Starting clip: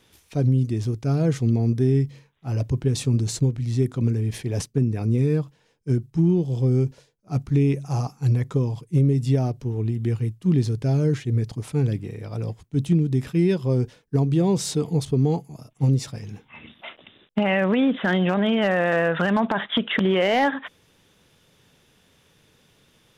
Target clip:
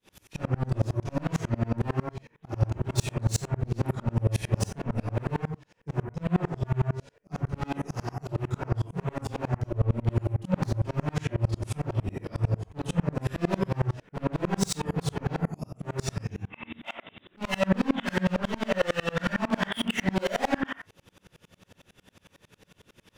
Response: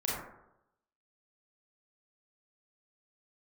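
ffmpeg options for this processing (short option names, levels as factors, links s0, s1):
-filter_complex "[0:a]volume=28.2,asoftclip=hard,volume=0.0355[s0];[1:a]atrim=start_sample=2205,afade=t=out:st=0.29:d=0.01,atrim=end_sample=13230,asetrate=57330,aresample=44100[s1];[s0][s1]afir=irnorm=-1:irlink=0,aeval=exprs='val(0)*pow(10,-32*if(lt(mod(-11*n/s,1),2*abs(-11)/1000),1-mod(-11*n/s,1)/(2*abs(-11)/1000),(mod(-11*n/s,1)-2*abs(-11)/1000)/(1-2*abs(-11)/1000))/20)':c=same,volume=2.11"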